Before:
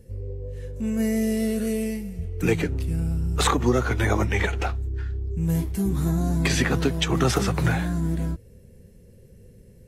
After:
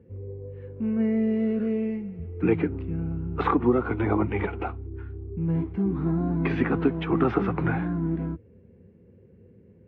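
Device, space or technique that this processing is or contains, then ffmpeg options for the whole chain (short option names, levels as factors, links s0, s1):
bass cabinet: -filter_complex "[0:a]highpass=f=86:w=0.5412,highpass=f=86:w=1.3066,equalizer=f=130:t=q:w=4:g=-9,equalizer=f=310:t=q:w=4:g=5,equalizer=f=590:t=q:w=4:g=-7,equalizer=f=1800:t=q:w=4:g=-7,lowpass=f=2100:w=0.5412,lowpass=f=2100:w=1.3066,asettb=1/sr,asplit=3[s0][s1][s2];[s0]atrim=end=3.684[s3];[s1]atrim=start=3.68:end=5.41,asetpts=PTS-STARTPTS,afade=t=in:d=0.004:c=qsin,afade=t=out:st=1.726:d=0.004:c=qsin,equalizer=f=1700:t=o:w=0.46:g=-5.5[s4];[s2]atrim=start=5.406[s5];[s3][s4]acrossfade=d=0.004:c1=hsin:c2=qsin[s6];[s6][s5]acrossfade=d=0.004:c1=qsin:c2=hsin"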